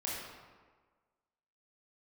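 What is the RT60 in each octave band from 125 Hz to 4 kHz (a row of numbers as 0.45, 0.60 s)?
1.3, 1.4, 1.5, 1.5, 1.2, 0.90 s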